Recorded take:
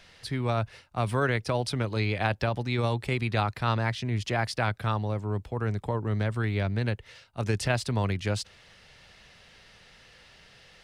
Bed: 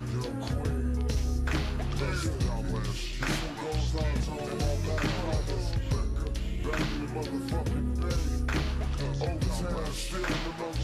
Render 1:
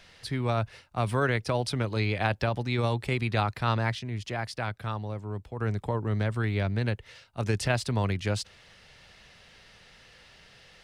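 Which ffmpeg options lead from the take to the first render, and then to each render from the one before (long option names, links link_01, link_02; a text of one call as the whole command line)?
ffmpeg -i in.wav -filter_complex "[0:a]asplit=3[link_01][link_02][link_03];[link_01]atrim=end=3.992[link_04];[link_02]atrim=start=3.988:end=5.602,asetpts=PTS-STARTPTS,volume=-5dB[link_05];[link_03]atrim=start=5.598[link_06];[link_04][link_05]acrossfade=duration=0.004:curve1=hsin:curve2=hsin[link_07];[link_07][link_06]acrossfade=duration=0.004:curve1=hsin:curve2=hsin" out.wav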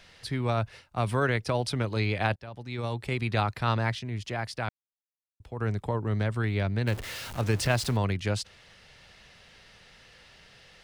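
ffmpeg -i in.wav -filter_complex "[0:a]asettb=1/sr,asplit=3[link_01][link_02][link_03];[link_01]atrim=end=6.874[link_04];[link_02]atrim=start=6.87:end=7.97,asetpts=PTS-STARTPTS,afade=type=in:duration=0.004:curve=qsin,afade=type=out:start_time=1.096:duration=0.004:curve=qsin,aeval=exprs='val(0)+0.5*0.02*sgn(val(0))':channel_layout=same[link_05];[link_03]atrim=start=7.966[link_06];[link_04][link_05]acrossfade=duration=0.004:curve1=hsin:curve2=qsin[link_07];[link_07][link_06]acrossfade=duration=0.004:curve1=qsin:curve2=hsin,asplit=4[link_08][link_09][link_10][link_11];[link_08]atrim=end=2.36,asetpts=PTS-STARTPTS,afade=type=out:start_time=2.356:duration=0.004:curve=hsin:silence=0.0749894[link_12];[link_09]atrim=start=2.36:end=4.69,asetpts=PTS-STARTPTS,afade=type=in:duration=0.97:silence=0.0749894,afade=type=out:start_time=2.326:duration=0.004:curve=hsin[link_13];[link_10]atrim=start=4.69:end=5.4,asetpts=PTS-STARTPTS,volume=0[link_14];[link_11]atrim=start=5.4,asetpts=PTS-STARTPTS,afade=type=in:duration=0.004:curve=hsin[link_15];[link_12][link_13][link_14][link_15]concat=n=4:v=0:a=1" out.wav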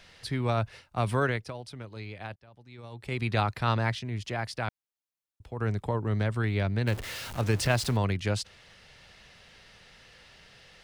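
ffmpeg -i in.wav -filter_complex "[0:a]asplit=3[link_01][link_02][link_03];[link_01]atrim=end=1.54,asetpts=PTS-STARTPTS,afade=type=out:start_time=1.21:duration=0.33:silence=0.223872[link_04];[link_02]atrim=start=1.54:end=2.91,asetpts=PTS-STARTPTS,volume=-13dB[link_05];[link_03]atrim=start=2.91,asetpts=PTS-STARTPTS,afade=type=in:duration=0.33:silence=0.223872[link_06];[link_04][link_05][link_06]concat=n=3:v=0:a=1" out.wav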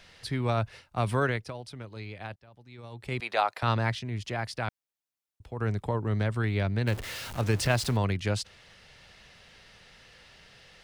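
ffmpeg -i in.wav -filter_complex "[0:a]asettb=1/sr,asplit=3[link_01][link_02][link_03];[link_01]atrim=end=3.204[link_04];[link_02]atrim=start=3.2:end=3.63,asetpts=PTS-STARTPTS,afade=type=in:duration=0.004:curve=qsin,afade=type=out:start_time=0.426:duration=0.004:curve=qsin,highpass=frequency=630:width_type=q:width=1.6[link_05];[link_03]atrim=start=3.626[link_06];[link_04][link_05]acrossfade=duration=0.004:curve1=hsin:curve2=qsin[link_07];[link_07][link_06]acrossfade=duration=0.004:curve1=qsin:curve2=hsin" out.wav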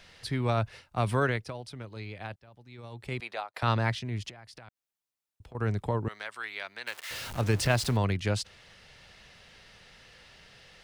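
ffmpeg -i in.wav -filter_complex "[0:a]asettb=1/sr,asplit=3[link_01][link_02][link_03];[link_01]atrim=end=4.294[link_04];[link_02]atrim=start=4.29:end=5.55,asetpts=PTS-STARTPTS,afade=type=in:duration=0.004:curve=qsin,afade=type=out:start_time=1.256:duration=0.004:curve=qsin,acompressor=threshold=-45dB:ratio=12:attack=3.2:release=140:knee=1:detection=peak[link_05];[link_03]atrim=start=5.546[link_06];[link_04][link_05]acrossfade=duration=0.004:curve1=hsin:curve2=qsin[link_07];[link_07][link_06]acrossfade=duration=0.004:curve1=qsin:curve2=hsin,asettb=1/sr,asplit=3[link_08][link_09][link_10];[link_08]atrim=end=6.084[link_11];[link_09]atrim=start=6.08:end=7.11,asetpts=PTS-STARTPTS,afade=type=in:duration=0.004:curve=qsin,afade=type=out:start_time=1.026:duration=0.004:curve=qsin,highpass=1100[link_12];[link_10]atrim=start=7.106[link_13];[link_11][link_12]acrossfade=duration=0.004:curve1=hsin:curve2=qsin[link_14];[link_14][link_13]acrossfade=duration=0.004:curve1=qsin:curve2=hsin,asplit=2[link_15][link_16];[link_15]atrim=end=3.54,asetpts=PTS-STARTPTS,afade=type=out:start_time=2.83:duration=0.71:curve=qsin[link_17];[link_16]atrim=start=3.54,asetpts=PTS-STARTPTS,afade=type=in:duration=0.004:curve=hsin[link_18];[link_17][link_18]concat=n=2:v=0:a=1" out.wav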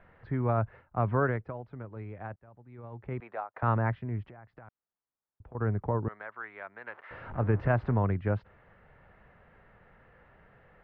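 ffmpeg -i in.wav -af "lowpass=frequency=1600:width=0.5412,lowpass=frequency=1600:width=1.3066" out.wav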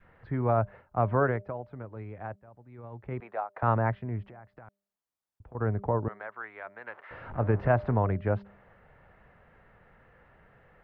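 ffmpeg -i in.wav -af "bandreject=frequency=200:width_type=h:width=4,bandreject=frequency=400:width_type=h:width=4,bandreject=frequency=600:width_type=h:width=4,adynamicequalizer=threshold=0.00631:dfrequency=660:dqfactor=1.2:tfrequency=660:tqfactor=1.2:attack=5:release=100:ratio=0.375:range=2.5:mode=boostabove:tftype=bell" out.wav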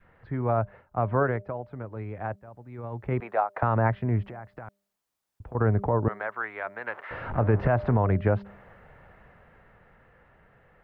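ffmpeg -i in.wav -af "dynaudnorm=framelen=320:gausssize=13:maxgain=11.5dB,alimiter=limit=-12dB:level=0:latency=1:release=161" out.wav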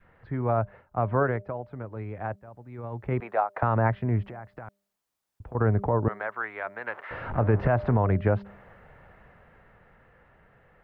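ffmpeg -i in.wav -af anull out.wav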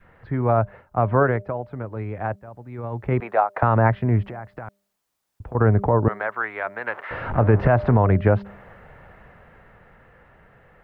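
ffmpeg -i in.wav -af "volume=6dB" out.wav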